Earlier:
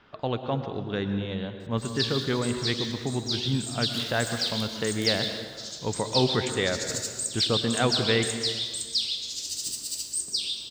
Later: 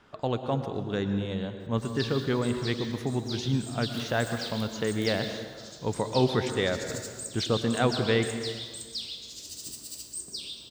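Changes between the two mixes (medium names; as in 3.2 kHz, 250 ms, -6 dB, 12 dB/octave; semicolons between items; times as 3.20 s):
speech: remove distance through air 240 m; master: add peaking EQ 5.1 kHz -9.5 dB 2.7 oct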